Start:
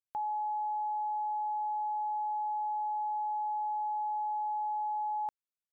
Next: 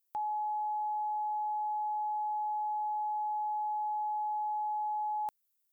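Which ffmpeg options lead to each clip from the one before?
-af "aemphasis=mode=production:type=75fm"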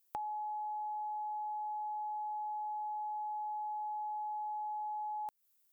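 -af "acompressor=threshold=0.00631:ratio=6,volume=1.78"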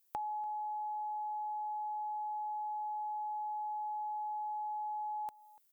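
-af "aecho=1:1:290:0.0891,volume=1.12"

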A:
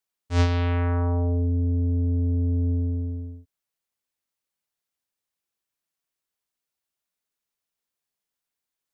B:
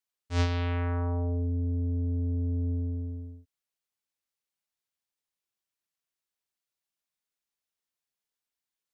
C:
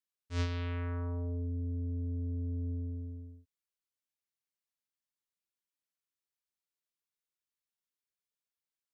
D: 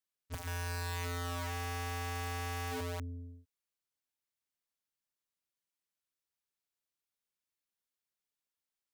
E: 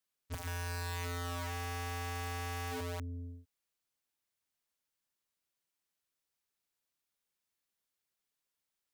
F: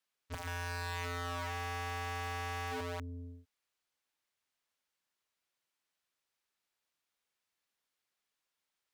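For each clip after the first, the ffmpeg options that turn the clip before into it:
-af "equalizer=f=3800:t=o:w=2.6:g=3,volume=0.501"
-af "equalizer=f=750:t=o:w=0.3:g=-12.5,volume=0.473"
-af "aeval=exprs='(mod(63.1*val(0)+1,2)-1)/63.1':c=same"
-af "acompressor=threshold=0.00794:ratio=6,volume=1.5"
-filter_complex "[0:a]asplit=2[s0][s1];[s1]highpass=f=720:p=1,volume=1.78,asoftclip=type=tanh:threshold=0.0224[s2];[s0][s2]amix=inputs=2:normalize=0,lowpass=f=3700:p=1,volume=0.501,volume=1.41"

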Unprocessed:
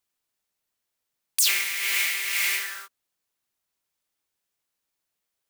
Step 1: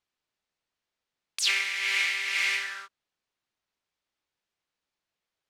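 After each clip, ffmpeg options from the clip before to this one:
-af "lowpass=4700"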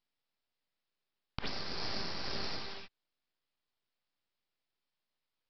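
-af "equalizer=f=1600:t=o:w=0.56:g=-14,acompressor=threshold=0.0178:ratio=6,aresample=11025,aeval=exprs='abs(val(0))':c=same,aresample=44100,volume=1.41"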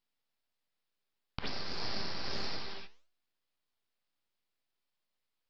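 -af "flanger=delay=8.1:depth=7.7:regen=85:speed=1.6:shape=sinusoidal,volume=1.68"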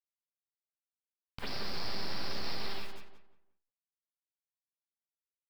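-filter_complex "[0:a]alimiter=level_in=2:limit=0.0631:level=0:latency=1:release=57,volume=0.501,acrusher=bits=9:mix=0:aa=0.000001,asplit=2[s0][s1];[s1]adelay=177,lowpass=f=2200:p=1,volume=0.531,asplit=2[s2][s3];[s3]adelay=177,lowpass=f=2200:p=1,volume=0.3,asplit=2[s4][s5];[s5]adelay=177,lowpass=f=2200:p=1,volume=0.3,asplit=2[s6][s7];[s7]adelay=177,lowpass=f=2200:p=1,volume=0.3[s8];[s2][s4][s6][s8]amix=inputs=4:normalize=0[s9];[s0][s9]amix=inputs=2:normalize=0,volume=1.58"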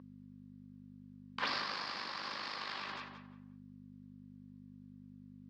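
-af "aeval=exprs='val(0)+0.00562*(sin(2*PI*50*n/s)+sin(2*PI*2*50*n/s)/2+sin(2*PI*3*50*n/s)/3+sin(2*PI*4*50*n/s)/4+sin(2*PI*5*50*n/s)/5)':c=same,asoftclip=type=tanh:threshold=0.0266,highpass=320,equalizer=f=400:t=q:w=4:g=-9,equalizer=f=690:t=q:w=4:g=-5,equalizer=f=1100:t=q:w=4:g=9,equalizer=f=1700:t=q:w=4:g=5,lowpass=f=5200:w=0.5412,lowpass=f=5200:w=1.3066,volume=2.99"

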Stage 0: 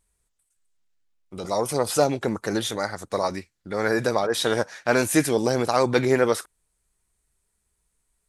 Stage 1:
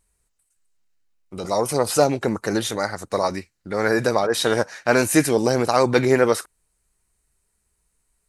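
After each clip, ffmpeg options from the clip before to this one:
-af "bandreject=f=3400:w=11,volume=1.41"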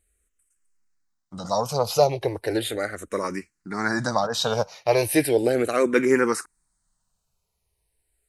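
-filter_complex "[0:a]asplit=2[s0][s1];[s1]afreqshift=-0.36[s2];[s0][s2]amix=inputs=2:normalize=1"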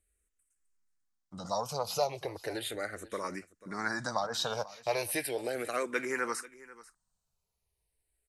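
-filter_complex "[0:a]acrossover=split=620|2700[s0][s1][s2];[s0]acompressor=threshold=0.0282:ratio=6[s3];[s3][s1][s2]amix=inputs=3:normalize=0,aecho=1:1:490:0.112,volume=0.422"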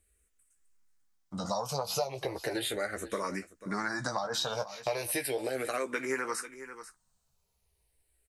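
-filter_complex "[0:a]acompressor=threshold=0.0158:ratio=6,asplit=2[s0][s1];[s1]adelay=15,volume=0.422[s2];[s0][s2]amix=inputs=2:normalize=0,volume=2"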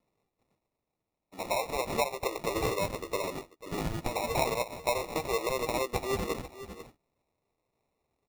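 -af "highpass=f=360:w=0.5412,highpass=f=360:w=1.3066,equalizer=f=1000:t=q:w=4:g=-8,equalizer=f=1900:t=q:w=4:g=-5,equalizer=f=3500:t=q:w=4:g=5,equalizer=f=5900:t=q:w=4:g=-6,lowpass=f=7100:w=0.5412,lowpass=f=7100:w=1.3066,acrusher=samples=28:mix=1:aa=0.000001,volume=1.58"

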